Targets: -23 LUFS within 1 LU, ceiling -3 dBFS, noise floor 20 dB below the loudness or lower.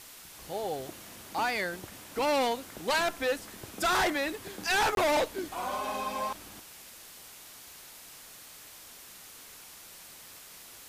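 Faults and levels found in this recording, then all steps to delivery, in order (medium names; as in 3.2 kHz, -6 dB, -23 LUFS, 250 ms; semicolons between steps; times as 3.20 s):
dropouts 1; longest dropout 22 ms; noise floor -50 dBFS; noise floor target -51 dBFS; loudness -30.5 LUFS; peak level -21.5 dBFS; loudness target -23.0 LUFS
-> interpolate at 4.95 s, 22 ms; noise reduction 6 dB, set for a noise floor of -50 dBFS; trim +7.5 dB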